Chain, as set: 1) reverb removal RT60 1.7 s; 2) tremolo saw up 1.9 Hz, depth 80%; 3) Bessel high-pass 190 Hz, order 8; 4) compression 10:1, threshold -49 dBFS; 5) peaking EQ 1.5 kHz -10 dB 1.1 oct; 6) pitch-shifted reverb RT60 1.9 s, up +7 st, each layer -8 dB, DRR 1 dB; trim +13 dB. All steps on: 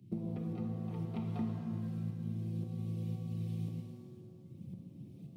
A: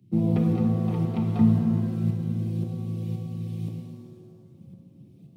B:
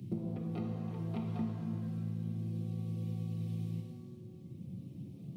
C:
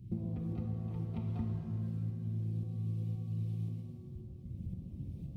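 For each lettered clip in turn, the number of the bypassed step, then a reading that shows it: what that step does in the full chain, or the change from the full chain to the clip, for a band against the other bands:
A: 4, crest factor change +3.0 dB; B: 2, momentary loudness spread change -3 LU; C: 3, crest factor change -2.5 dB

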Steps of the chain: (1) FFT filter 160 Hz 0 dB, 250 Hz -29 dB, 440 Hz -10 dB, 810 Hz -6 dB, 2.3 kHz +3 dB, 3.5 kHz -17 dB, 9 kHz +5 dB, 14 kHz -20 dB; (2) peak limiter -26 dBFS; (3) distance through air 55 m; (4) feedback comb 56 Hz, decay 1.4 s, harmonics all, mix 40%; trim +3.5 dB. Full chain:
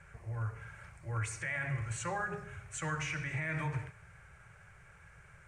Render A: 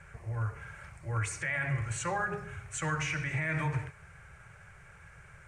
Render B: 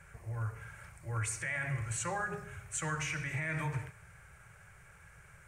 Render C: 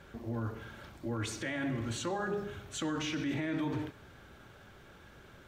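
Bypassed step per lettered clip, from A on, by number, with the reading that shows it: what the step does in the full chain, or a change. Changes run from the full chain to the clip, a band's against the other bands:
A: 4, loudness change +4.0 LU; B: 3, 8 kHz band +5.0 dB; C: 1, 250 Hz band +11.0 dB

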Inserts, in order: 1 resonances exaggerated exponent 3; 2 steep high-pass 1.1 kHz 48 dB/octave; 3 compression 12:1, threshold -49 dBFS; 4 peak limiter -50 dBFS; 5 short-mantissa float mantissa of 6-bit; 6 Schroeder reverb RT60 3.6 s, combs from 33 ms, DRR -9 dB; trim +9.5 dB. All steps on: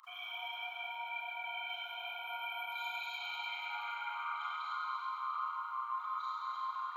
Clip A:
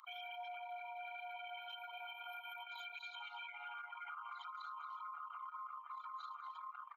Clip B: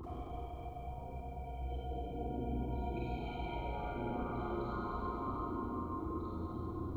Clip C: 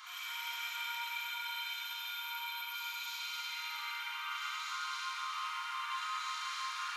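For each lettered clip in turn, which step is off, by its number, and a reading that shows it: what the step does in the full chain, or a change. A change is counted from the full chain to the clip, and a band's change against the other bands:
6, crest factor change -5.0 dB; 2, 500 Hz band +28.0 dB; 1, loudness change +1.0 LU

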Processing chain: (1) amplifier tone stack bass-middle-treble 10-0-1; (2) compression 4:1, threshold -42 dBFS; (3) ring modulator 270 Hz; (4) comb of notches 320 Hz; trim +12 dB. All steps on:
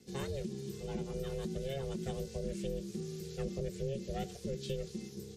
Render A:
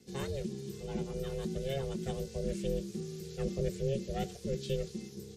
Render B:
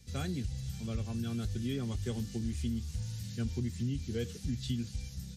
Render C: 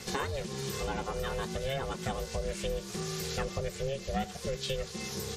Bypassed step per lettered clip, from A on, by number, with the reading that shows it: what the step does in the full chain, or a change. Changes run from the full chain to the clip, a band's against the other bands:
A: 2, mean gain reduction 1.5 dB; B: 3, crest factor change -2.5 dB; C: 1, 250 Hz band -10.0 dB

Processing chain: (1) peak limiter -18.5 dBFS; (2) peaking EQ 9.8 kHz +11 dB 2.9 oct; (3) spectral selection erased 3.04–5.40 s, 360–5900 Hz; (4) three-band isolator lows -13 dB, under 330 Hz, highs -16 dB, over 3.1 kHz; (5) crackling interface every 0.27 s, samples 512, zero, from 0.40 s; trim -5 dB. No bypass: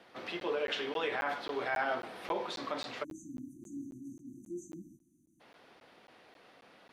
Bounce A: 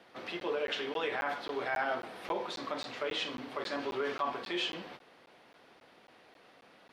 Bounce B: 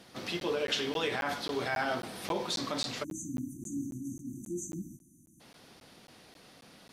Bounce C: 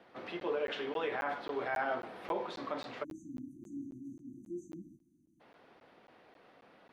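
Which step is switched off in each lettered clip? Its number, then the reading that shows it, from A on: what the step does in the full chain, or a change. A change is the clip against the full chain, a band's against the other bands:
3, momentary loudness spread change -9 LU; 4, 8 kHz band +10.5 dB; 2, 8 kHz band -8.5 dB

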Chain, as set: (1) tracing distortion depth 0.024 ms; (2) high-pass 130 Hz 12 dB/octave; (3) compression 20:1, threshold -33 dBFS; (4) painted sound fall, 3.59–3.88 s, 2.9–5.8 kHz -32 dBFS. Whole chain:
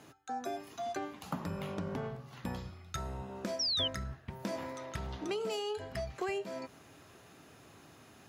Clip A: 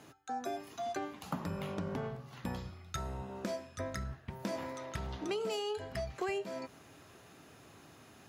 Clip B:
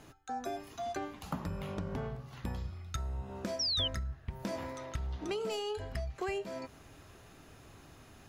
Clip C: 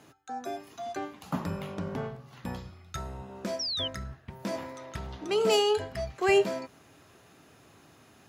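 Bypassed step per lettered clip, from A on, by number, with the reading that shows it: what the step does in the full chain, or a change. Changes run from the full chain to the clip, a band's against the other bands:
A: 4, 4 kHz band -10.0 dB; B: 2, 125 Hz band +3.5 dB; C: 3, mean gain reduction 2.5 dB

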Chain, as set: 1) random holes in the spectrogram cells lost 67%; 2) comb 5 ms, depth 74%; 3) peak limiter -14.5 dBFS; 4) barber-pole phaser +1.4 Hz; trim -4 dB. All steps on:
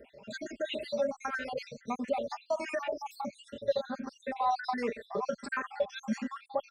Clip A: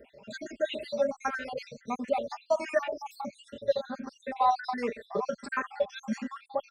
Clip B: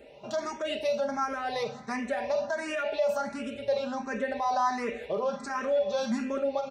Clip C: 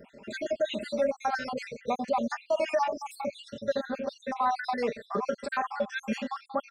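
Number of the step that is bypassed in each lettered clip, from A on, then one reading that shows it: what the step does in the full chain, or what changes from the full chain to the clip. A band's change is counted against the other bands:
3, crest factor change +3.0 dB; 1, 8 kHz band +2.5 dB; 4, crest factor change -4.0 dB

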